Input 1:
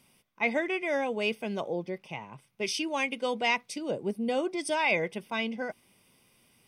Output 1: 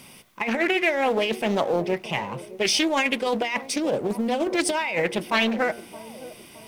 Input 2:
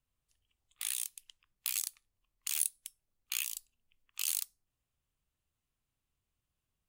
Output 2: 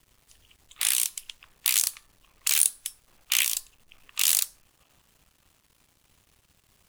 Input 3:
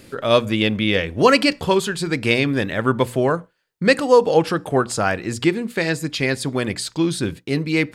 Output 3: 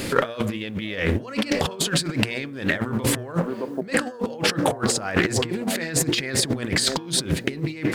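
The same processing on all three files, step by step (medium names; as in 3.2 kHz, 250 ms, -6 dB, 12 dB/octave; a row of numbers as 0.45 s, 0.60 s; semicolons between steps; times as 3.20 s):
companding laws mixed up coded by mu; peak limiter -12 dBFS; feedback echo behind a band-pass 616 ms, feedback 41%, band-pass 440 Hz, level -16.5 dB; compressor with a negative ratio -29 dBFS, ratio -0.5; bass shelf 110 Hz -4.5 dB; de-hum 117.6 Hz, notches 15; dynamic bell 1.9 kHz, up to +4 dB, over -46 dBFS, Q 4.5; loudspeaker Doppler distortion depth 0.31 ms; normalise loudness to -24 LUFS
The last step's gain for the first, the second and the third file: +8.0 dB, +12.0 dB, +6.0 dB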